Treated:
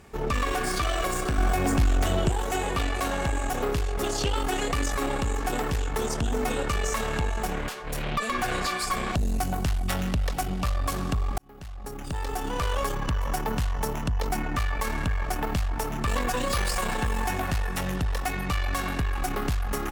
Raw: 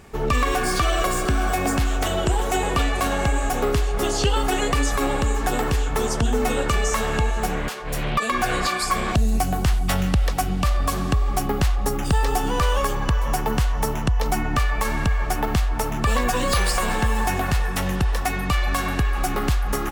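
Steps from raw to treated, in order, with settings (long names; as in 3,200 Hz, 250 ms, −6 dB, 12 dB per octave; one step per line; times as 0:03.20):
tube saturation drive 18 dB, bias 0.55
0:01.38–0:02.29: low-shelf EQ 330 Hz +7 dB
0:11.38–0:12.80: fade in
level −2 dB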